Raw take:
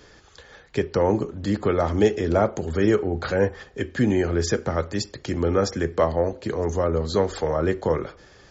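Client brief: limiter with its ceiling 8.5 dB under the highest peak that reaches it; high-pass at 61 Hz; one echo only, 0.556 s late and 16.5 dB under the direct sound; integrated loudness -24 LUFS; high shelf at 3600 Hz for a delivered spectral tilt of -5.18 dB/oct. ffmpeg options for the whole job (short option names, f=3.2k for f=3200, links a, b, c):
-af "highpass=61,highshelf=f=3.6k:g=7.5,alimiter=limit=-14.5dB:level=0:latency=1,aecho=1:1:556:0.15,volume=2dB"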